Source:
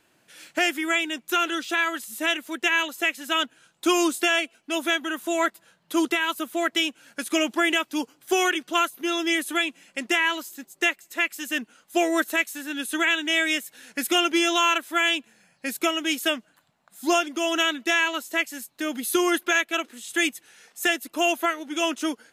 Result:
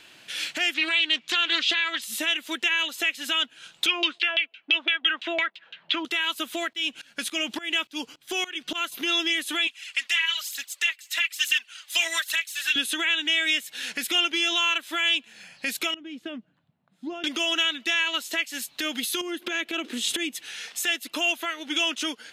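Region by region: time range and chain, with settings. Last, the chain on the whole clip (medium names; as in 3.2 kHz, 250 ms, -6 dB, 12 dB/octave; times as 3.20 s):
0.74–2.02 s: low-pass 3.5 kHz + treble shelf 2.3 kHz +11.5 dB + loudspeaker Doppler distortion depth 0.17 ms
3.86–6.05 s: frequency weighting D + LFO low-pass saw down 5.9 Hz 560–3400 Hz
6.73–8.92 s: bass shelf 150 Hz +9 dB + sawtooth tremolo in dB swelling 3.5 Hz, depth 22 dB
9.67–12.76 s: high-pass 1.5 kHz + phaser 1.1 Hz, delay 4.2 ms, feedback 53%
15.94–17.24 s: compression 4:1, threshold -22 dBFS + band-pass filter 130 Hz, Q 1.2
19.21–20.35 s: peaking EQ 310 Hz +13.5 dB 1.9 oct + compression 10:1, threshold -24 dBFS
whole clip: compression 6:1, threshold -35 dBFS; peak limiter -28.5 dBFS; peaking EQ 3.3 kHz +14 dB 1.8 oct; trim +5.5 dB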